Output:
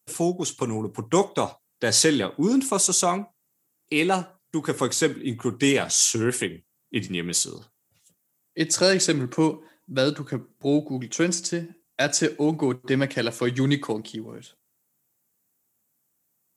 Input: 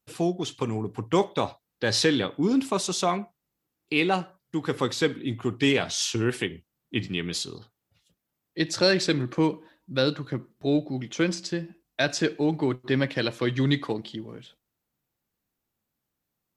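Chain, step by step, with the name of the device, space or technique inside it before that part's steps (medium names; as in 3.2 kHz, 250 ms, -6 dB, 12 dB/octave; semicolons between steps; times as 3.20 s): budget condenser microphone (high-pass 110 Hz; resonant high shelf 5.6 kHz +10 dB, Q 1.5); trim +2 dB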